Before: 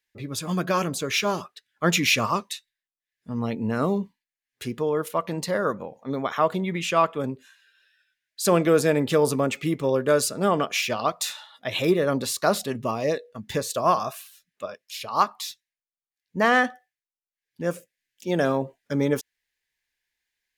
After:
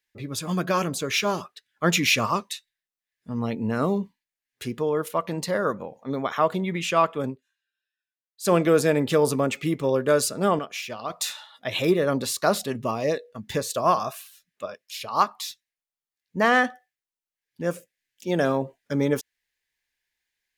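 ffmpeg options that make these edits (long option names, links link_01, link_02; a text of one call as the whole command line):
ffmpeg -i in.wav -filter_complex "[0:a]asplit=5[link_01][link_02][link_03][link_04][link_05];[link_01]atrim=end=7.41,asetpts=PTS-STARTPTS,afade=type=out:start_time=7.28:duration=0.13:silence=0.0668344[link_06];[link_02]atrim=start=7.41:end=8.38,asetpts=PTS-STARTPTS,volume=-23.5dB[link_07];[link_03]atrim=start=8.38:end=10.592,asetpts=PTS-STARTPTS,afade=type=in:duration=0.13:silence=0.0668344[link_08];[link_04]atrim=start=10.588:end=11.102,asetpts=PTS-STARTPTS,volume=-8dB[link_09];[link_05]atrim=start=11.098[link_10];[link_06][link_07][link_08]concat=n=3:v=0:a=1[link_11];[link_11][link_09]acrossfade=duration=0.004:curve1=hsin:curve2=hsin[link_12];[link_12][link_10]acrossfade=duration=0.004:curve1=hsin:curve2=hsin" out.wav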